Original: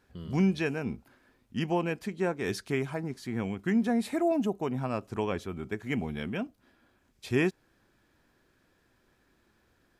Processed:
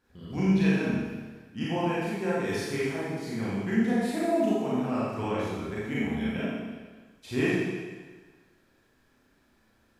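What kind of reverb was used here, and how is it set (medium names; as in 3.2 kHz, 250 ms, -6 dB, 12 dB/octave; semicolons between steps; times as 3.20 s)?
Schroeder reverb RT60 1.4 s, combs from 28 ms, DRR -8.5 dB; trim -6.5 dB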